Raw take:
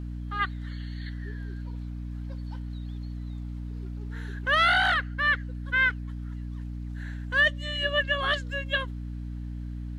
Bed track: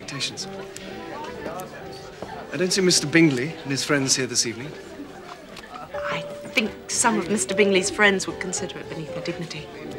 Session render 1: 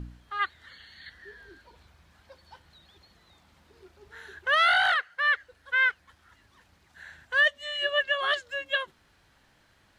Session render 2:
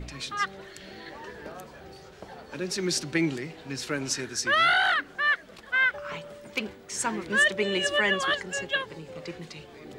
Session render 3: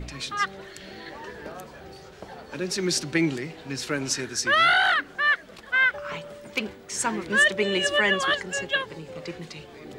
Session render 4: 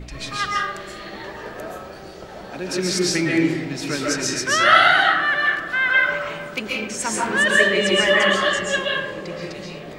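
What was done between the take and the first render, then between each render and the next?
de-hum 60 Hz, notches 5
add bed track -9.5 dB
gain +2.5 dB
darkening echo 0.441 s, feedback 81%, low-pass 1000 Hz, level -16 dB; digital reverb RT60 0.82 s, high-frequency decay 0.6×, pre-delay 95 ms, DRR -4.5 dB

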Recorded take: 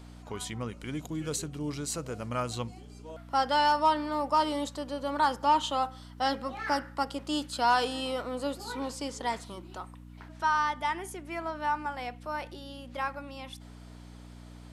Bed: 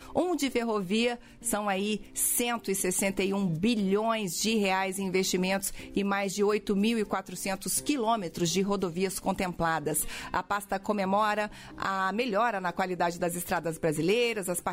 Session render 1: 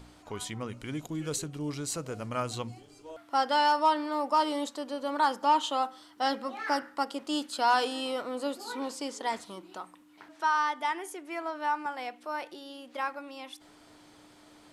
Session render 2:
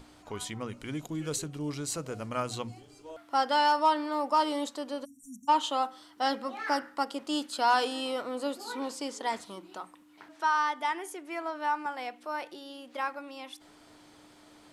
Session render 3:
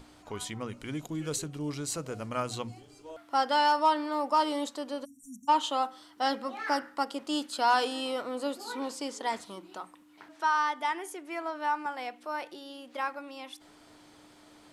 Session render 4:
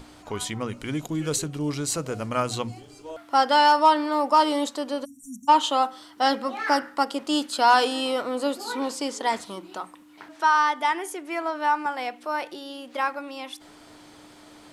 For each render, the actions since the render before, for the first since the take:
de-hum 60 Hz, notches 4
5.05–5.49 spectral delete 270–5600 Hz; notches 60/120/180 Hz
nothing audible
gain +7 dB

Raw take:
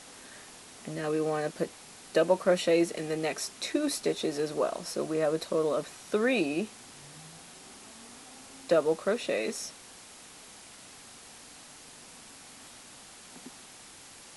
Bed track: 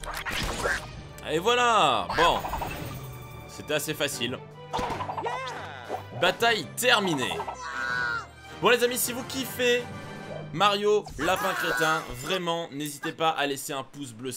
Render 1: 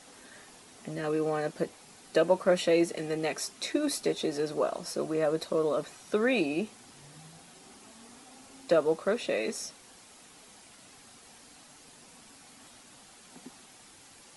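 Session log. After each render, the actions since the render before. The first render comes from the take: denoiser 6 dB, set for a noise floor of -51 dBFS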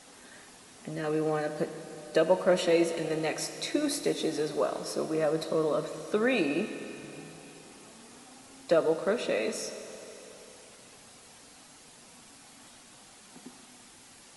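Schroeder reverb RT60 3.4 s, combs from 25 ms, DRR 8.5 dB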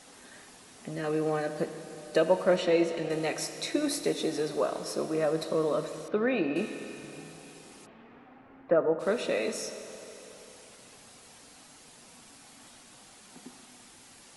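2.56–3.1 air absorption 73 m; 6.08–6.56 air absorption 320 m; 7.85–8.99 LPF 2800 Hz -> 1600 Hz 24 dB/oct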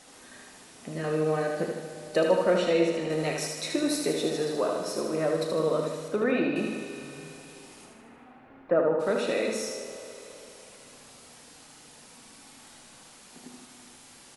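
doubler 37 ms -13 dB; feedback echo 77 ms, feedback 56%, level -4.5 dB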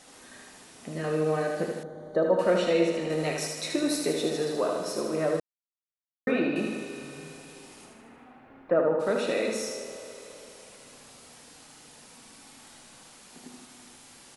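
1.83–2.39 running mean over 17 samples; 5.4–6.27 mute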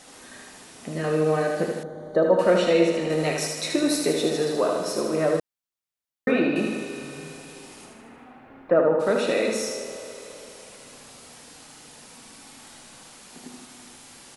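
gain +4.5 dB

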